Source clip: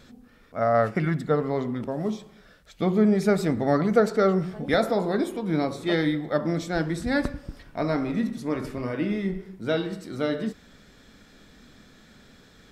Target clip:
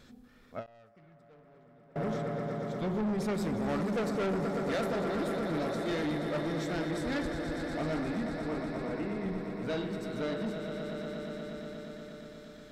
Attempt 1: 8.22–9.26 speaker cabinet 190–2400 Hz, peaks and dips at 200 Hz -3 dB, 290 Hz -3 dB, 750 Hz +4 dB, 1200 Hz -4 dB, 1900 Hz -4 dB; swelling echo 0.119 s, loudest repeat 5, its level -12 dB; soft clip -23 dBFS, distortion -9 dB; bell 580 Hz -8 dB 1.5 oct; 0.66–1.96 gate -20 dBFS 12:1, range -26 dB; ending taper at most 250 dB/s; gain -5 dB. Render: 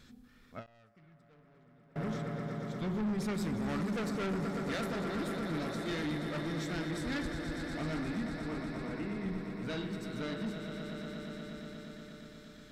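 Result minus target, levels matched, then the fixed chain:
500 Hz band -3.5 dB
8.22–9.26 speaker cabinet 190–2400 Hz, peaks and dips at 200 Hz -3 dB, 290 Hz -3 dB, 750 Hz +4 dB, 1200 Hz -4 dB, 1900 Hz -4 dB; swelling echo 0.119 s, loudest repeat 5, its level -12 dB; soft clip -23 dBFS, distortion -9 dB; 0.66–1.96 gate -20 dBFS 12:1, range -26 dB; ending taper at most 250 dB/s; gain -5 dB

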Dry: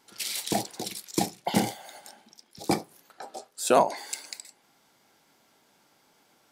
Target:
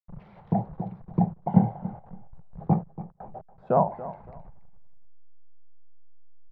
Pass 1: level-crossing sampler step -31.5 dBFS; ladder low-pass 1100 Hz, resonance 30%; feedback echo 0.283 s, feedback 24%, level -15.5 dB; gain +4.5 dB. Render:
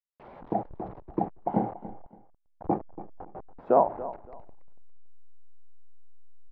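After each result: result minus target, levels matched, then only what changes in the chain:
level-crossing sampler: distortion +9 dB; 250 Hz band -4.0 dB
change: level-crossing sampler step -40 dBFS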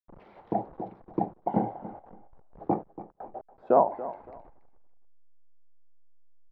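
250 Hz band -4.0 dB
add after ladder low-pass: resonant low shelf 220 Hz +9.5 dB, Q 3

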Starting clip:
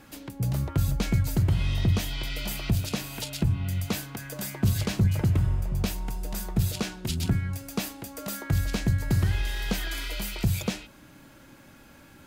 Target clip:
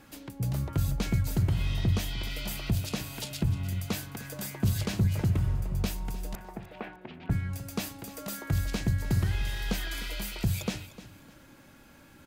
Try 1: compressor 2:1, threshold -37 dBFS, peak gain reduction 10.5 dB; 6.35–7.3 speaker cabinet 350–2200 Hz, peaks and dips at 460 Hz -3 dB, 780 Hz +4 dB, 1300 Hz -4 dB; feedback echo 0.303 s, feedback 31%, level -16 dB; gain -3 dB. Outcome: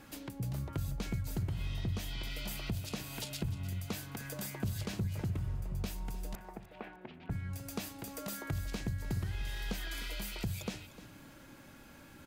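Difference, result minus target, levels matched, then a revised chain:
compressor: peak gain reduction +10.5 dB
6.35–7.3 speaker cabinet 350–2200 Hz, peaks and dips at 460 Hz -3 dB, 780 Hz +4 dB, 1300 Hz -4 dB; feedback echo 0.303 s, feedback 31%, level -16 dB; gain -3 dB

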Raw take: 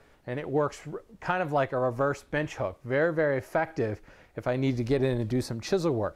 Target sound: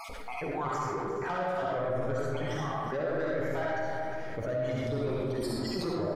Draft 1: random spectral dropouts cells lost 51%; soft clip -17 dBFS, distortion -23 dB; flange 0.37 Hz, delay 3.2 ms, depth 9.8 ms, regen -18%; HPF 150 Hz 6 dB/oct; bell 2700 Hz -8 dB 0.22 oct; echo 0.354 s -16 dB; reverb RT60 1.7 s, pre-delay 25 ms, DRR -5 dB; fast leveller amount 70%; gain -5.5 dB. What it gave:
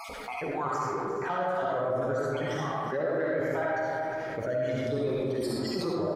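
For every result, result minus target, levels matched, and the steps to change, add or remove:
soft clip: distortion -11 dB; 125 Hz band -3.5 dB
change: soft clip -25 dBFS, distortion -12 dB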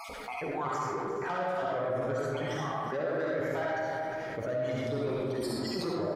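125 Hz band -2.5 dB
remove: HPF 150 Hz 6 dB/oct

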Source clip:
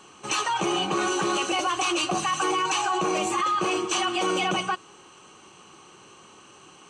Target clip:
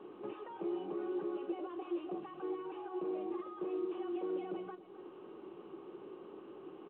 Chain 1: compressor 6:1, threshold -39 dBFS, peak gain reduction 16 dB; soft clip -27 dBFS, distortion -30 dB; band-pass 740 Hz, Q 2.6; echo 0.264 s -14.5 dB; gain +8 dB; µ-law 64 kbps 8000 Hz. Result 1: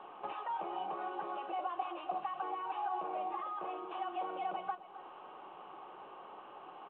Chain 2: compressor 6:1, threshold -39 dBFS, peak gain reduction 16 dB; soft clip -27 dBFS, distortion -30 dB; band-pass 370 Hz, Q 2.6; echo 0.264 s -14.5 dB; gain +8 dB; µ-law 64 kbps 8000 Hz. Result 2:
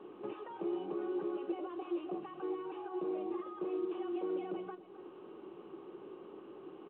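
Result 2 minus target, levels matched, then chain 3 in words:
soft clip: distortion -11 dB
compressor 6:1, threshold -39 dBFS, peak gain reduction 16 dB; soft clip -34 dBFS, distortion -19 dB; band-pass 370 Hz, Q 2.6; echo 0.264 s -14.5 dB; gain +8 dB; µ-law 64 kbps 8000 Hz

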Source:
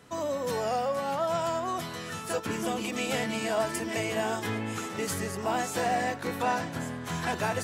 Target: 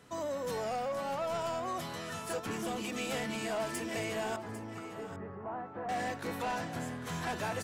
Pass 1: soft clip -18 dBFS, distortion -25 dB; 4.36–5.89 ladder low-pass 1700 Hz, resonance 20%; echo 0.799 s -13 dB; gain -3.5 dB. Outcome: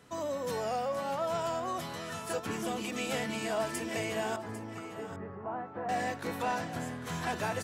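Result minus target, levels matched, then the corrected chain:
soft clip: distortion -11 dB
soft clip -26 dBFS, distortion -14 dB; 4.36–5.89 ladder low-pass 1700 Hz, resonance 20%; echo 0.799 s -13 dB; gain -3.5 dB

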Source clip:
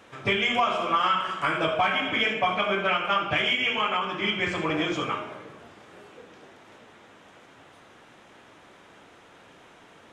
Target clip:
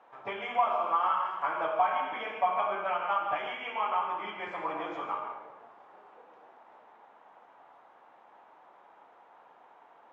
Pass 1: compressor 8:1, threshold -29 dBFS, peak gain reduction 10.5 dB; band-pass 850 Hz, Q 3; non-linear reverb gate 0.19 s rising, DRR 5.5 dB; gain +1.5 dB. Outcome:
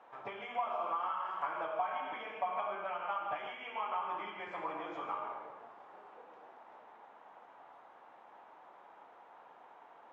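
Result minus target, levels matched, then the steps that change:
compressor: peak gain reduction +10.5 dB
remove: compressor 8:1, threshold -29 dBFS, peak gain reduction 10.5 dB

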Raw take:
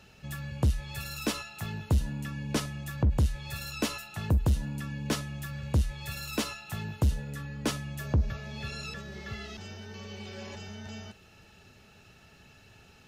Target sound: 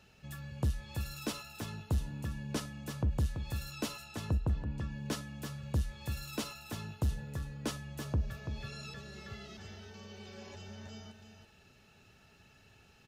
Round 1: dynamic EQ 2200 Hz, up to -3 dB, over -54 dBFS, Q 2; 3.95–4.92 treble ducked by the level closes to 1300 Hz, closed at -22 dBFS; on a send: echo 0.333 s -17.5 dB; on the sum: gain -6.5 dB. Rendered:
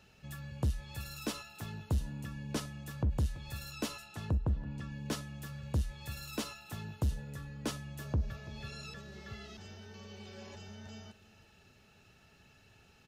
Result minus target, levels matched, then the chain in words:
echo-to-direct -9.5 dB
dynamic EQ 2200 Hz, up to -3 dB, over -54 dBFS, Q 2; 3.95–4.92 treble ducked by the level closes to 1300 Hz, closed at -22 dBFS; on a send: echo 0.333 s -8 dB; on the sum: gain -6.5 dB

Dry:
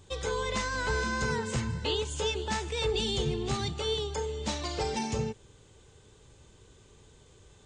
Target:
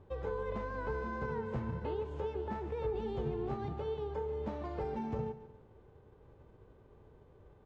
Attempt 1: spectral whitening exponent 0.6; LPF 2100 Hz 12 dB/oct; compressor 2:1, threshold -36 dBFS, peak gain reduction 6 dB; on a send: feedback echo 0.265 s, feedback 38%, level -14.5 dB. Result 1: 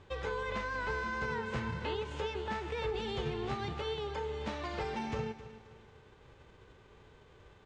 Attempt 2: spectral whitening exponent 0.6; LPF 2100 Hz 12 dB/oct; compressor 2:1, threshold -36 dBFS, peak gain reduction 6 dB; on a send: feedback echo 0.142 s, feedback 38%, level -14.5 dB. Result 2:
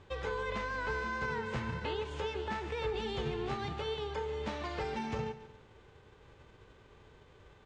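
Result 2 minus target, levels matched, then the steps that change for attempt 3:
2000 Hz band +8.5 dB
change: LPF 780 Hz 12 dB/oct

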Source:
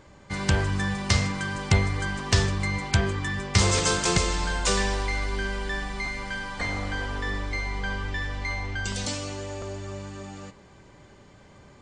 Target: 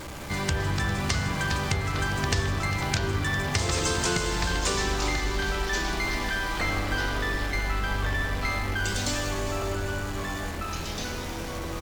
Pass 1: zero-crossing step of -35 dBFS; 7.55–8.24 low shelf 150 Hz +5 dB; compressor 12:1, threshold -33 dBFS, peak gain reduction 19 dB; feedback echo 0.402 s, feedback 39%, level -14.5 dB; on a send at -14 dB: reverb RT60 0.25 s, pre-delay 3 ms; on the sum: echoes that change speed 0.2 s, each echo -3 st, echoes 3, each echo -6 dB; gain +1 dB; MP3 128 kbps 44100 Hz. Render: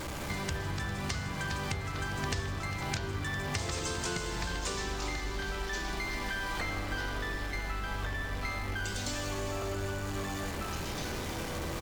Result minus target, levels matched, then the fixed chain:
compressor: peak gain reduction +8.5 dB
zero-crossing step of -35 dBFS; 7.55–8.24 low shelf 150 Hz +5 dB; compressor 12:1, threshold -23.5 dBFS, peak gain reduction 10.5 dB; feedback echo 0.402 s, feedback 39%, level -14.5 dB; on a send at -14 dB: reverb RT60 0.25 s, pre-delay 3 ms; on the sum: echoes that change speed 0.2 s, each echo -3 st, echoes 3, each echo -6 dB; gain +1 dB; MP3 128 kbps 44100 Hz

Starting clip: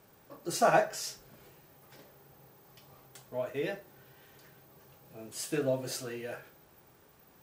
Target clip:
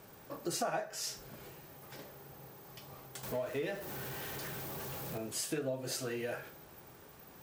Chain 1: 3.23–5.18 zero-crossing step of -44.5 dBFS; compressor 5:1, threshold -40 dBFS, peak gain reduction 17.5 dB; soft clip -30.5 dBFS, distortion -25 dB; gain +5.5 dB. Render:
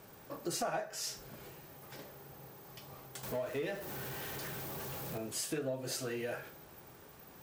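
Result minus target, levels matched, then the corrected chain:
soft clip: distortion +18 dB
3.23–5.18 zero-crossing step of -44.5 dBFS; compressor 5:1, threshold -40 dBFS, peak gain reduction 17.5 dB; soft clip -20.5 dBFS, distortion -43 dB; gain +5.5 dB

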